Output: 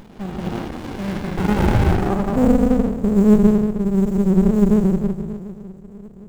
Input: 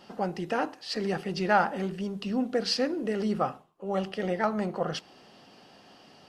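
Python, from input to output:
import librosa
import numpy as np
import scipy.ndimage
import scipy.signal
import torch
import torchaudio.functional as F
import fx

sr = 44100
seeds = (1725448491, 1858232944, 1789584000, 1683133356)

p1 = fx.spec_steps(x, sr, hold_ms=200)
p2 = fx.low_shelf(p1, sr, hz=340.0, db=-3.0, at=(2.65, 3.28))
p3 = fx.echo_swing(p2, sr, ms=754, ratio=3, feedback_pct=33, wet_db=-18.5)
p4 = fx.filter_sweep_lowpass(p3, sr, from_hz=3300.0, to_hz=200.0, start_s=0.75, end_s=2.62, q=7.2)
p5 = fx.sample_hold(p4, sr, seeds[0], rate_hz=7500.0, jitter_pct=20)
p6 = p4 + (p5 * 10.0 ** (-7.5 / 20.0))
p7 = fx.rev_plate(p6, sr, seeds[1], rt60_s=1.2, hf_ratio=0.8, predelay_ms=115, drr_db=-1.0)
p8 = fx.running_max(p7, sr, window=65)
y = p8 * 10.0 ** (3.5 / 20.0)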